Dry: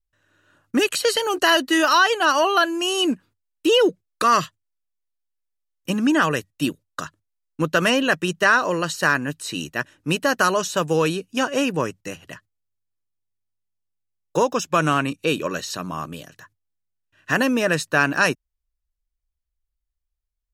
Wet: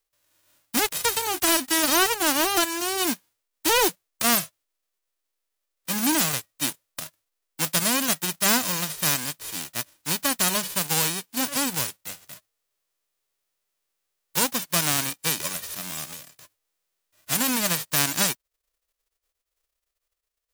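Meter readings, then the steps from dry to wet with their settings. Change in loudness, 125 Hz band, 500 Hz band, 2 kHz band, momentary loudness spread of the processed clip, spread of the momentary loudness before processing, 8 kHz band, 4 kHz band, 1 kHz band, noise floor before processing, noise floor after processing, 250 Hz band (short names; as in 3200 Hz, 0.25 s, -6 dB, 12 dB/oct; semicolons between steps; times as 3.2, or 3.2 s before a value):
-2.5 dB, -6.0 dB, -10.0 dB, -7.5 dB, 12 LU, 14 LU, +7.5 dB, -1.0 dB, -7.0 dB, -80 dBFS, -83 dBFS, -6.5 dB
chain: spectral whitening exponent 0.1; gain -4 dB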